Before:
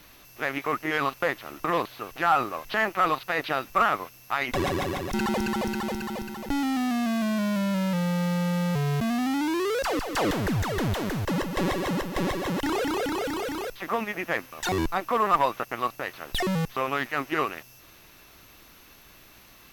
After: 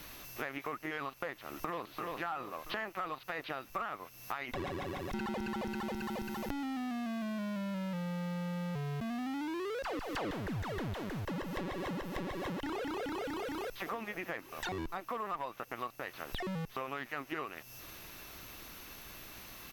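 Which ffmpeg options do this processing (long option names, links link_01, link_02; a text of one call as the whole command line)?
ffmpeg -i in.wav -filter_complex "[0:a]asplit=2[link_01][link_02];[link_02]afade=type=in:start_time=1.36:duration=0.01,afade=type=out:start_time=1.99:duration=0.01,aecho=0:1:340|680|1020|1360|1700:0.473151|0.212918|0.0958131|0.0431159|0.0194022[link_03];[link_01][link_03]amix=inputs=2:normalize=0,asplit=2[link_04][link_05];[link_05]afade=type=in:start_time=13.41:duration=0.01,afade=type=out:start_time=13.89:duration=0.01,aecho=0:1:440|880|1320|1760|2200|2640|3080:0.237137|0.142282|0.0853695|0.0512217|0.030733|0.0184398|0.0110639[link_06];[link_04][link_06]amix=inputs=2:normalize=0,acrossover=split=4200[link_07][link_08];[link_08]acompressor=threshold=-47dB:ratio=4:attack=1:release=60[link_09];[link_07][link_09]amix=inputs=2:normalize=0,highshelf=frequency=12000:gain=3,acompressor=threshold=-39dB:ratio=6,volume=2dB" out.wav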